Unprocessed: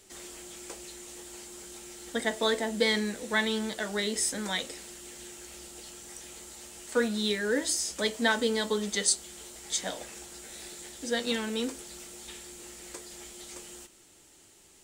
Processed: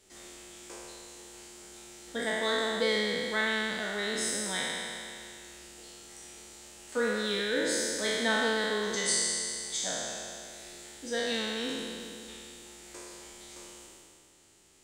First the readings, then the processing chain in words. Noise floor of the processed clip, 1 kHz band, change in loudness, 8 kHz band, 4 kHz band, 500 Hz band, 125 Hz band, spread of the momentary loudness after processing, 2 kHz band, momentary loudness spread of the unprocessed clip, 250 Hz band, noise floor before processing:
-59 dBFS, 0.0 dB, -0.5 dB, -1.0 dB, 0.0 dB, -0.5 dB, no reading, 20 LU, +1.0 dB, 17 LU, -3.5 dB, -58 dBFS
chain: spectral sustain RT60 2.56 s; treble shelf 11 kHz -8 dB; trim -6 dB

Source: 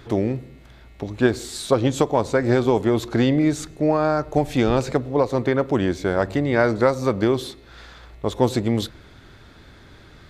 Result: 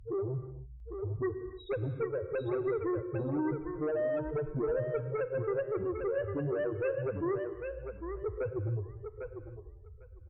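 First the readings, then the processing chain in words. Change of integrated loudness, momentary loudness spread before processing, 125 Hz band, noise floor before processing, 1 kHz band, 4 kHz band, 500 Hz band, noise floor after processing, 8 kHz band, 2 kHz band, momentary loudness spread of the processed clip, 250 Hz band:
-13.5 dB, 8 LU, -11.5 dB, -47 dBFS, -18.0 dB, under -25 dB, -11.0 dB, -51 dBFS, under -40 dB, -16.0 dB, 12 LU, -16.0 dB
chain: low-pass 3 kHz 24 dB/octave; comb 2.1 ms, depth 48%; compression 6:1, threshold -20 dBFS, peak gain reduction 9.5 dB; loudest bins only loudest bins 2; Chebyshev shaper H 4 -28 dB, 5 -14 dB, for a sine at -18.5 dBFS; on a send: thinning echo 801 ms, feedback 16%, high-pass 340 Hz, level -5.5 dB; on the sum: gated-style reverb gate 330 ms flat, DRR 11 dB; trim -6.5 dB

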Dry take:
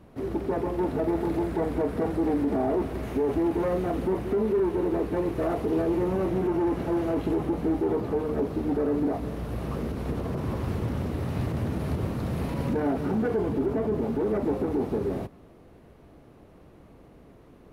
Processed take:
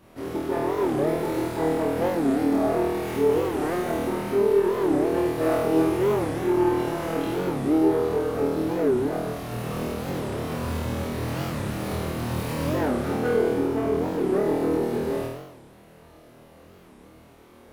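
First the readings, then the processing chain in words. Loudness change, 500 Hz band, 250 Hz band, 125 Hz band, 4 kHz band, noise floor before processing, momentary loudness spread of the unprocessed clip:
+3.0 dB, +4.0 dB, +2.0 dB, 0.0 dB, +9.0 dB, -53 dBFS, 5 LU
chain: tracing distortion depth 0.051 ms; tilt EQ +2 dB/octave; flutter echo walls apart 4.3 m, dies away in 1 s; warped record 45 rpm, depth 250 cents

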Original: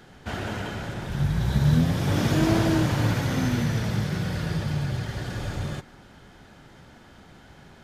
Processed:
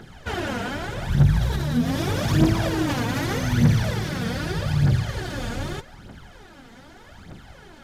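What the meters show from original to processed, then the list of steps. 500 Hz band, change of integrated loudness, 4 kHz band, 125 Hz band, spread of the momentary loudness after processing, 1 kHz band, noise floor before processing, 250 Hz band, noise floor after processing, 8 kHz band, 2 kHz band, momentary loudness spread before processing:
+2.0 dB, +2.0 dB, +2.5 dB, +2.0 dB, 11 LU, +2.5 dB, -51 dBFS, +1.5 dB, -47 dBFS, +2.5 dB, +3.0 dB, 11 LU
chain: peak limiter -17.5 dBFS, peak gain reduction 7.5 dB; phaser 0.82 Hz, delay 4.5 ms, feedback 65%; trim +2 dB

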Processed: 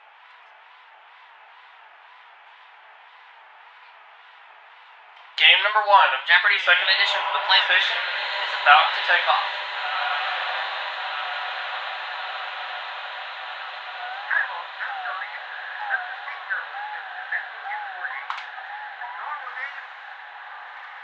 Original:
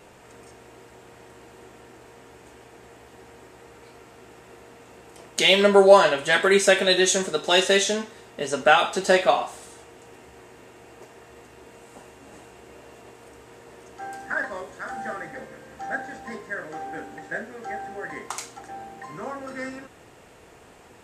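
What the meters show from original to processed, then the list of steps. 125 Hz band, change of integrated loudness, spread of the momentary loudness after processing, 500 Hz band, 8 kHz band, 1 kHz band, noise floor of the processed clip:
under -40 dB, -0.5 dB, 17 LU, -12.0 dB, under -20 dB, +4.5 dB, -49 dBFS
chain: elliptic band-pass 850–3500 Hz, stop band 60 dB; wow and flutter 130 cents; echo that smears into a reverb 1416 ms, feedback 69%, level -9 dB; trim +5.5 dB

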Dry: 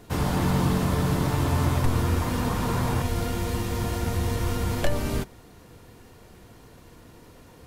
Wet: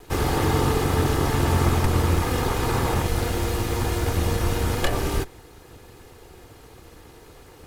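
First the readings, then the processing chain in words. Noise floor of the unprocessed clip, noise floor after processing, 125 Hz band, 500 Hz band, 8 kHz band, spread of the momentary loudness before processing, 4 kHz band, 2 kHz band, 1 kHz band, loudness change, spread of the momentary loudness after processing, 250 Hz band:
-50 dBFS, -48 dBFS, +1.5 dB, +4.5 dB, +4.5 dB, 5 LU, +4.5 dB, +4.5 dB, +4.0 dB, +2.5 dB, 4 LU, +0.5 dB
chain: comb filter that takes the minimum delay 2.4 ms; trim +4.5 dB

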